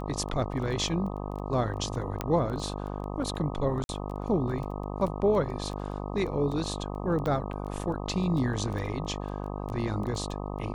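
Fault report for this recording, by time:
buzz 50 Hz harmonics 25 -35 dBFS
crackle 10 per s -34 dBFS
2.21 s: pop -16 dBFS
3.84–3.89 s: dropout 51 ms
7.26 s: pop -19 dBFS

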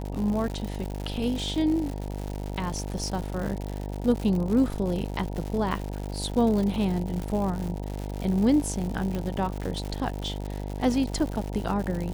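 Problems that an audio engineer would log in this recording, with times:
buzz 50 Hz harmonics 19 -33 dBFS
crackle 170 per s -31 dBFS
9.15 s: pop -19 dBFS

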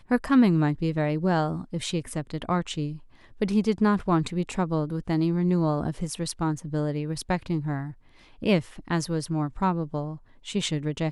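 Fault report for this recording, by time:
6.58 s: dropout 2.1 ms

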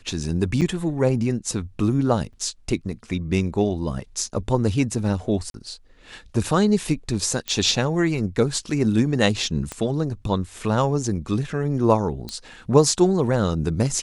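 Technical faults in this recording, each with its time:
0.61–0.62 s: dropout 6.8 ms
2.33–2.34 s: dropout 5.5 ms
5.50–5.54 s: dropout 42 ms
7.48 s: pop -12 dBFS
9.72 s: pop -15 dBFS
12.29 s: pop -17 dBFS

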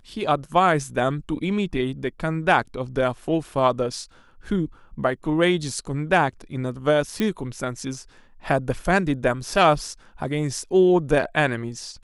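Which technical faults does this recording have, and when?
7.20 s: pop -11 dBFS

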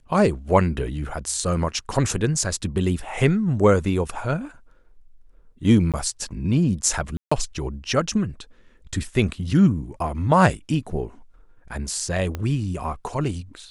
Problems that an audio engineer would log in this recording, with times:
5.92–5.94 s: dropout 17 ms
7.17–7.32 s: dropout 145 ms
12.35 s: pop -15 dBFS

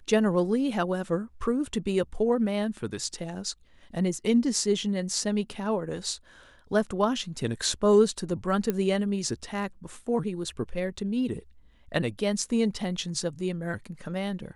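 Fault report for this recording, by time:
8.70 s: pop -14 dBFS

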